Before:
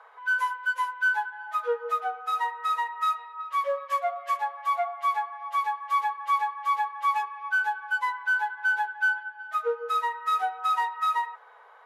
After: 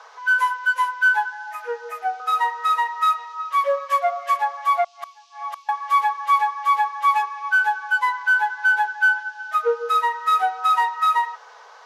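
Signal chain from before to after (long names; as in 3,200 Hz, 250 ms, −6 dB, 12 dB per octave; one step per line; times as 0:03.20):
0:01.34–0:02.20: phaser with its sweep stopped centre 790 Hz, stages 8
0:04.84–0:05.69: gate with flip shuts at −26 dBFS, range −28 dB
noise in a band 2,500–6,300 Hz −66 dBFS
level +7 dB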